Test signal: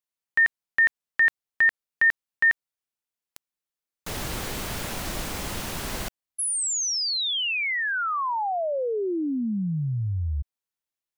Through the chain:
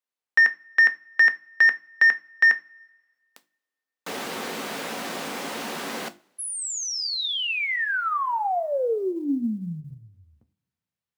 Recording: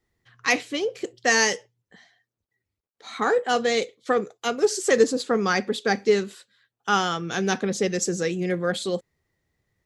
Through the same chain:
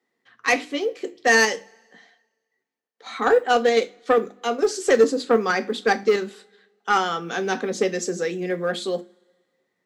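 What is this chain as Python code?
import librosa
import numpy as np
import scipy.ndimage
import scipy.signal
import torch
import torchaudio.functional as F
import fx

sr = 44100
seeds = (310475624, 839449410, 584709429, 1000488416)

p1 = scipy.signal.sosfilt(scipy.signal.butter(4, 210.0, 'highpass', fs=sr, output='sos'), x)
p2 = fx.high_shelf(p1, sr, hz=5400.0, db=-10.0)
p3 = fx.hum_notches(p2, sr, base_hz=50, count=7)
p4 = fx.level_steps(p3, sr, step_db=22)
p5 = p3 + F.gain(torch.from_numpy(p4), 0.0).numpy()
p6 = 10.0 ** (-9.5 / 20.0) * np.tanh(p5 / 10.0 ** (-9.5 / 20.0))
p7 = fx.quant_float(p6, sr, bits=6)
y = fx.rev_double_slope(p7, sr, seeds[0], early_s=0.23, late_s=1.6, knee_db=-27, drr_db=8.5)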